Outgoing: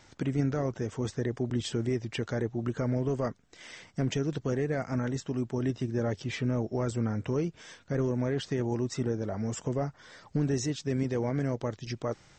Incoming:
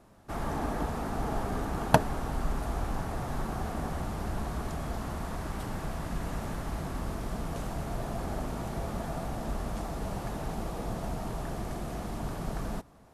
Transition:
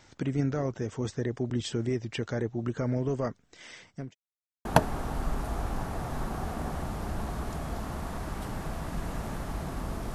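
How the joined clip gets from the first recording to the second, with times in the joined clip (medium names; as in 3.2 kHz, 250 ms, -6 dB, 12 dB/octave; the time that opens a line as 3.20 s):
outgoing
3.58–4.15 s: fade out equal-power
4.15–4.65 s: mute
4.65 s: go over to incoming from 1.83 s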